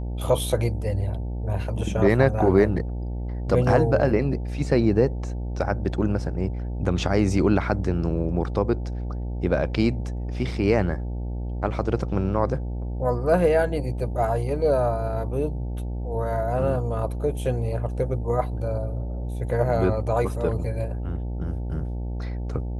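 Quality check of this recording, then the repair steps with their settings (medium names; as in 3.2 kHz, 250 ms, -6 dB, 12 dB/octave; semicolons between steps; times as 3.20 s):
buzz 60 Hz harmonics 15 -29 dBFS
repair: de-hum 60 Hz, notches 15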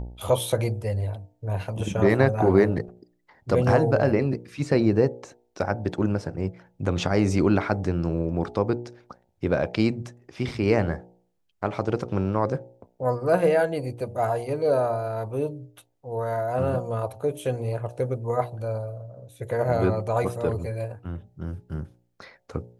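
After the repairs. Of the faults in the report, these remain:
nothing left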